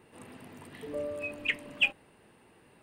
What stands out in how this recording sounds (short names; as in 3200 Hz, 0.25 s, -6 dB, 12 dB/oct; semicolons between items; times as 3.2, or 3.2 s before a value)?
noise floor -61 dBFS; spectral tilt -0.5 dB/oct